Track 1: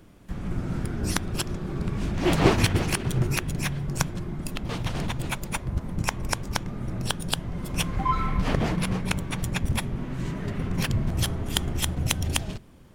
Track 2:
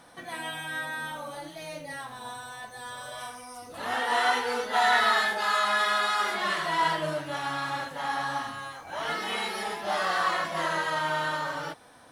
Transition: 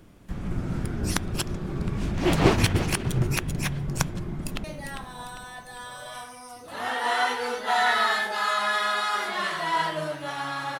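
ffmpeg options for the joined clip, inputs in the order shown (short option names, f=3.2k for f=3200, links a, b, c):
-filter_complex "[0:a]apad=whole_dur=10.79,atrim=end=10.79,atrim=end=4.642[a];[1:a]atrim=start=1.698:end=7.85[b];[a][b]acrossfade=d=0.004:c1=hsin:c2=hsin,asplit=2[c][d];[d]afade=t=in:st=4.26:d=0.01,afade=t=out:st=4.64:d=0.01,aecho=0:1:400|800|1200|1600|2000:0.421697|0.189763|0.0853935|0.0384271|0.0172922[e];[c][e]amix=inputs=2:normalize=0"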